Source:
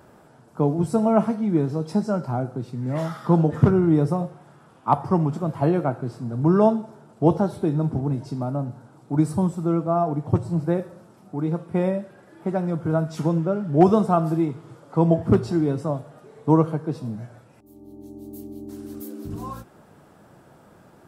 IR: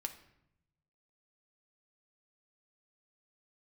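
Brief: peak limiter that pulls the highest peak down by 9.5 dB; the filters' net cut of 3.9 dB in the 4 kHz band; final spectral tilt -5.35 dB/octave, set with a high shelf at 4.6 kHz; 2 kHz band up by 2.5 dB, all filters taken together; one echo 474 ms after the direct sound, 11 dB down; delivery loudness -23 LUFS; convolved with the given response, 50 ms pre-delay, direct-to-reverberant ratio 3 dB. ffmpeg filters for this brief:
-filter_complex "[0:a]equalizer=f=2000:t=o:g=5,equalizer=f=4000:t=o:g=-4.5,highshelf=f=4600:g=-4,alimiter=limit=0.211:level=0:latency=1,aecho=1:1:474:0.282,asplit=2[s0][s1];[1:a]atrim=start_sample=2205,adelay=50[s2];[s1][s2]afir=irnorm=-1:irlink=0,volume=0.794[s3];[s0][s3]amix=inputs=2:normalize=0,volume=1.12"

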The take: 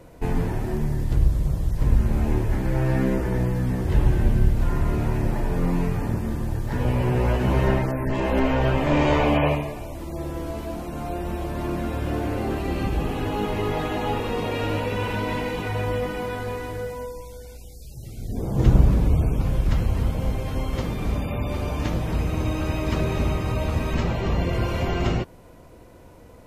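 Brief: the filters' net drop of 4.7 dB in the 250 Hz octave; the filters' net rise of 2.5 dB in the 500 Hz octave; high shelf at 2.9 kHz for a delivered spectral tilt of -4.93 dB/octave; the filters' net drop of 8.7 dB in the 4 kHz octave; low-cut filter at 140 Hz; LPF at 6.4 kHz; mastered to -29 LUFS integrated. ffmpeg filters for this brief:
-af "highpass=140,lowpass=6400,equalizer=f=250:t=o:g=-7.5,equalizer=f=500:t=o:g=5.5,highshelf=f=2900:g=-7,equalizer=f=4000:t=o:g=-7,volume=0.891"

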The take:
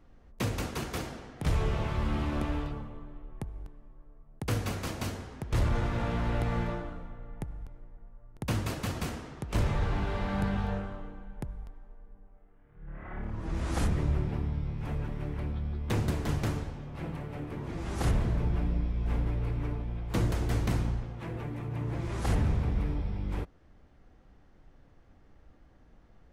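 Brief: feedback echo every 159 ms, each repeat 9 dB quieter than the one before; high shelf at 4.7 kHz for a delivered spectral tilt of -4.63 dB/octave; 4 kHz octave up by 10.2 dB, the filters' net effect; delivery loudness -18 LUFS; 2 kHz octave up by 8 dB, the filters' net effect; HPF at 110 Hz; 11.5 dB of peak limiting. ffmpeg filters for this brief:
-af "highpass=110,equalizer=f=2000:t=o:g=7,equalizer=f=4000:t=o:g=8,highshelf=f=4700:g=5.5,alimiter=limit=0.0668:level=0:latency=1,aecho=1:1:159|318|477|636:0.355|0.124|0.0435|0.0152,volume=7.08"

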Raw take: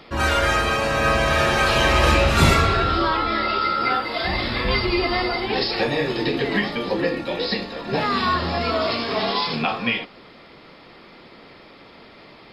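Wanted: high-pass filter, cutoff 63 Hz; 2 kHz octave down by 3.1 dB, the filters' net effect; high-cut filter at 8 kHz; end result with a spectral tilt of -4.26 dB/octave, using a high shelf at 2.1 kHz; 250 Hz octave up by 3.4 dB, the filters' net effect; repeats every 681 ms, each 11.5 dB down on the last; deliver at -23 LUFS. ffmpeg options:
-af "highpass=63,lowpass=8000,equalizer=f=250:t=o:g=4.5,equalizer=f=2000:t=o:g=-8.5,highshelf=f=2100:g=7.5,aecho=1:1:681|1362|2043:0.266|0.0718|0.0194,volume=0.668"

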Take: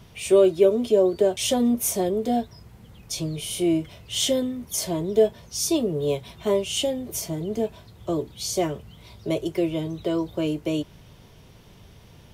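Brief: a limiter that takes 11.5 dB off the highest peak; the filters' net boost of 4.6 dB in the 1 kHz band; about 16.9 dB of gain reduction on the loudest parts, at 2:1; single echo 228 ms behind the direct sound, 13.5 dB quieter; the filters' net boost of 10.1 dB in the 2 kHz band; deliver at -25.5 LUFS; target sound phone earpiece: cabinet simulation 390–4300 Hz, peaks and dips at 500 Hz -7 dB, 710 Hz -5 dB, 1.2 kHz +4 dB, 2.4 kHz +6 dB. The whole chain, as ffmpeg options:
-af "equalizer=f=1000:t=o:g=8.5,equalizer=f=2000:t=o:g=6.5,acompressor=threshold=0.00708:ratio=2,alimiter=level_in=2.66:limit=0.0631:level=0:latency=1,volume=0.376,highpass=390,equalizer=f=500:t=q:w=4:g=-7,equalizer=f=710:t=q:w=4:g=-5,equalizer=f=1200:t=q:w=4:g=4,equalizer=f=2400:t=q:w=4:g=6,lowpass=f=4300:w=0.5412,lowpass=f=4300:w=1.3066,aecho=1:1:228:0.211,volume=9.44"

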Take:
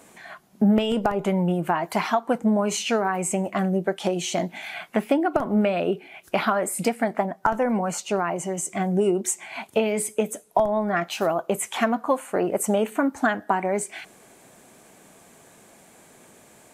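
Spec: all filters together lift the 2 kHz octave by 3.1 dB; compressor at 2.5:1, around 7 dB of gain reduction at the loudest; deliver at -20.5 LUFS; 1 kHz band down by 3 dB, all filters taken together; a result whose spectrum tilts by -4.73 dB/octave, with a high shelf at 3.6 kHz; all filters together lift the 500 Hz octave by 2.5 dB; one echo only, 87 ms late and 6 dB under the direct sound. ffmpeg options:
-af "equalizer=f=500:t=o:g=5.5,equalizer=f=1000:t=o:g=-8.5,equalizer=f=2000:t=o:g=8.5,highshelf=f=3600:g=-6.5,acompressor=threshold=0.0562:ratio=2.5,aecho=1:1:87:0.501,volume=2.24"

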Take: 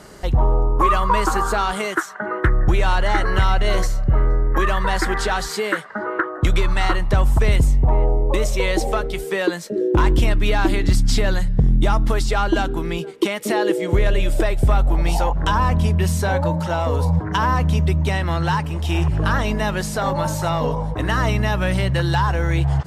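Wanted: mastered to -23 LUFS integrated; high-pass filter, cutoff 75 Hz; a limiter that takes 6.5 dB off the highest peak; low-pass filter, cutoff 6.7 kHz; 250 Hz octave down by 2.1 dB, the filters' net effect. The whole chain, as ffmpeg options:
-af "highpass=75,lowpass=6700,equalizer=f=250:t=o:g=-3.5,volume=1.06,alimiter=limit=0.266:level=0:latency=1"

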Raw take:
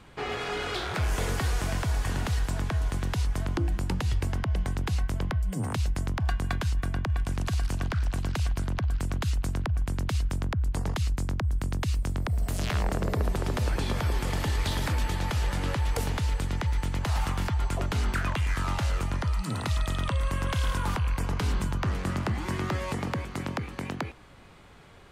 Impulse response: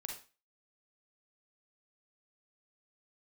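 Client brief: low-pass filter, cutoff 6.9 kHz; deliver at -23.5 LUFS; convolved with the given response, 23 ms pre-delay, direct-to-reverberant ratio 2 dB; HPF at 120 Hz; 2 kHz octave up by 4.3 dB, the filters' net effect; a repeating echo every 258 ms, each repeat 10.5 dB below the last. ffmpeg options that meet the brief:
-filter_complex "[0:a]highpass=120,lowpass=6900,equalizer=f=2000:t=o:g=5.5,aecho=1:1:258|516|774:0.299|0.0896|0.0269,asplit=2[s0][s1];[1:a]atrim=start_sample=2205,adelay=23[s2];[s1][s2]afir=irnorm=-1:irlink=0,volume=1[s3];[s0][s3]amix=inputs=2:normalize=0,volume=2"

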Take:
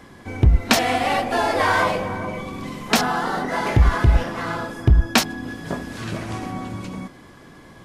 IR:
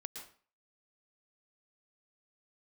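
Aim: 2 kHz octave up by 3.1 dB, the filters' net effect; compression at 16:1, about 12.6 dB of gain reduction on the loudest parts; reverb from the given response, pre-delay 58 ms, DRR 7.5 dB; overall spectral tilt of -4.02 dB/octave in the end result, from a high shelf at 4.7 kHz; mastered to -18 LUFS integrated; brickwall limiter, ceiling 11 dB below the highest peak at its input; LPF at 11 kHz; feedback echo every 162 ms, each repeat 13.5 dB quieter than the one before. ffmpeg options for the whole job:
-filter_complex "[0:a]lowpass=11000,equalizer=f=2000:t=o:g=4.5,highshelf=f=4700:g=-3.5,acompressor=threshold=0.0794:ratio=16,alimiter=limit=0.106:level=0:latency=1,aecho=1:1:162|324:0.211|0.0444,asplit=2[s0][s1];[1:a]atrim=start_sample=2205,adelay=58[s2];[s1][s2]afir=irnorm=-1:irlink=0,volume=0.596[s3];[s0][s3]amix=inputs=2:normalize=0,volume=3.55"

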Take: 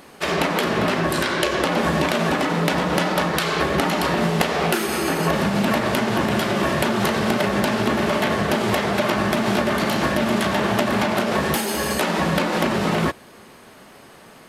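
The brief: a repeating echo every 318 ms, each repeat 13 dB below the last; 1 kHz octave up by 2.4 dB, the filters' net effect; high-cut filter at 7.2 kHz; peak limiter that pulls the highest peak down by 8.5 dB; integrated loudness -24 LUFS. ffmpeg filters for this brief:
-af "lowpass=7200,equalizer=f=1000:t=o:g=3,alimiter=limit=0.224:level=0:latency=1,aecho=1:1:318|636|954:0.224|0.0493|0.0108,volume=0.794"

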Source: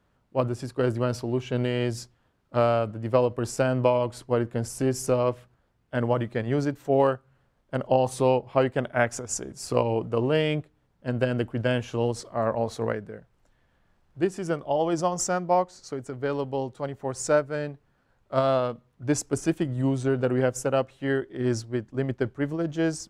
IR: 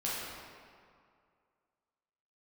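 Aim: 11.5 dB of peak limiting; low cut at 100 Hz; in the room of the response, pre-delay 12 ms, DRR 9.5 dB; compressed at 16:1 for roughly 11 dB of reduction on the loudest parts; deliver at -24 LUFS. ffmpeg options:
-filter_complex "[0:a]highpass=100,acompressor=threshold=0.0447:ratio=16,alimiter=level_in=1.26:limit=0.0631:level=0:latency=1,volume=0.794,asplit=2[s0][s1];[1:a]atrim=start_sample=2205,adelay=12[s2];[s1][s2]afir=irnorm=-1:irlink=0,volume=0.168[s3];[s0][s3]amix=inputs=2:normalize=0,volume=4.47"

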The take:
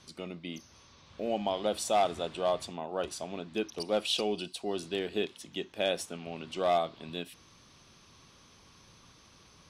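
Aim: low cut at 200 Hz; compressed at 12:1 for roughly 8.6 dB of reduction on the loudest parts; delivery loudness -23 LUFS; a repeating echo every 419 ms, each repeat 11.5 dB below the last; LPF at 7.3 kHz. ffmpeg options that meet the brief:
-af "highpass=200,lowpass=7300,acompressor=threshold=0.0282:ratio=12,aecho=1:1:419|838|1257:0.266|0.0718|0.0194,volume=5.62"

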